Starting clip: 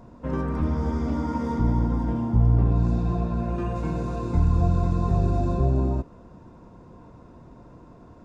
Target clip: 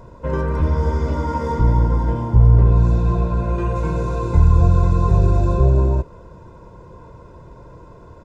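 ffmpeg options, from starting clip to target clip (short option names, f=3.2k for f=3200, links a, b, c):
-af "aecho=1:1:2:0.64,volume=5dB"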